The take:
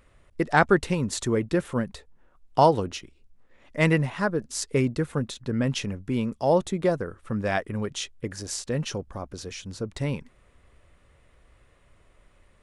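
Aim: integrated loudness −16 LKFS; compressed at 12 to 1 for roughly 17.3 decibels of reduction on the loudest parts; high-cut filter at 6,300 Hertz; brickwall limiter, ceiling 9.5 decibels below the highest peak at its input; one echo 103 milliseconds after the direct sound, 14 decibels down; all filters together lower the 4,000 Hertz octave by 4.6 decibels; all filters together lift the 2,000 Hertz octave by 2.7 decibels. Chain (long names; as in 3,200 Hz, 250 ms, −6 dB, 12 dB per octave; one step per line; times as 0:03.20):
low-pass filter 6,300 Hz
parametric band 2,000 Hz +5 dB
parametric band 4,000 Hz −7.5 dB
downward compressor 12 to 1, threshold −30 dBFS
brickwall limiter −27 dBFS
single-tap delay 103 ms −14 dB
level +22.5 dB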